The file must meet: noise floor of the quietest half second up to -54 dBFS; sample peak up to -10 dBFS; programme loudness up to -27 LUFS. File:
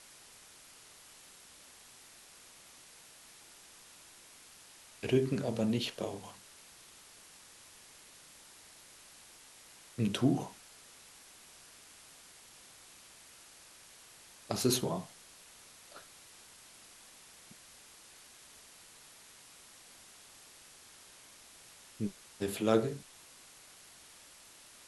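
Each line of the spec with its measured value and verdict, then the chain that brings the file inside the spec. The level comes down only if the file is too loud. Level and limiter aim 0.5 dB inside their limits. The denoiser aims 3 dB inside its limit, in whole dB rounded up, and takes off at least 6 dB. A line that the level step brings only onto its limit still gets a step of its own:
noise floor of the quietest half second -57 dBFS: pass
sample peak -13.0 dBFS: pass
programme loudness -34.0 LUFS: pass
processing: none needed

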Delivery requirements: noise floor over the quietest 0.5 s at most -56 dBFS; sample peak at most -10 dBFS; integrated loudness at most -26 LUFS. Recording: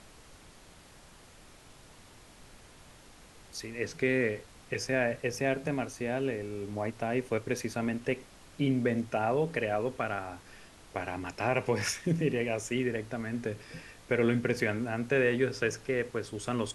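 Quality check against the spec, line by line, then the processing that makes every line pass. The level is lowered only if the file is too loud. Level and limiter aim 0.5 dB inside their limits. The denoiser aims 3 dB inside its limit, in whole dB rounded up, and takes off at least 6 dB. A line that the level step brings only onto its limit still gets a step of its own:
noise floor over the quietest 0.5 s -55 dBFS: fail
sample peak -14.0 dBFS: pass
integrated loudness -31.5 LUFS: pass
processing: noise reduction 6 dB, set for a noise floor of -55 dBFS

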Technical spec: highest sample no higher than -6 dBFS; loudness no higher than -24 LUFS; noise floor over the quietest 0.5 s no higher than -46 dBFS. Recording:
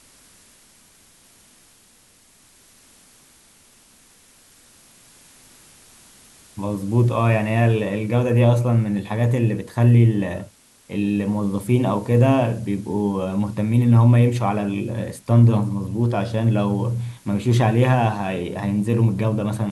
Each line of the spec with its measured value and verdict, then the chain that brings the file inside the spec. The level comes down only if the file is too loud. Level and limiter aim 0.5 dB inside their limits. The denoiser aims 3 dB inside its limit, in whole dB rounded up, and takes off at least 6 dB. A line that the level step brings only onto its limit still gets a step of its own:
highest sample -4.5 dBFS: fail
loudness -20.0 LUFS: fail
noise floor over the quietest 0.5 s -54 dBFS: pass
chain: trim -4.5 dB

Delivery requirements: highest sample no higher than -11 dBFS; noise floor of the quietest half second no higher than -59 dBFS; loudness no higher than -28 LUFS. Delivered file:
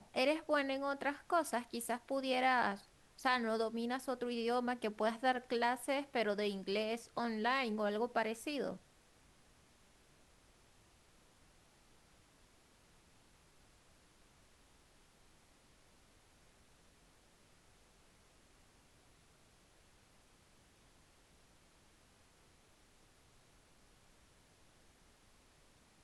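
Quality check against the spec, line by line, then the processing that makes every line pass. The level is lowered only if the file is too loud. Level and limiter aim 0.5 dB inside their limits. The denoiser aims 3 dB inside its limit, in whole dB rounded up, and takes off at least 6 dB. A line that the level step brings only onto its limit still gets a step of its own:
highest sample -19.5 dBFS: pass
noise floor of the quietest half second -67 dBFS: pass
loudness -37.0 LUFS: pass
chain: none needed

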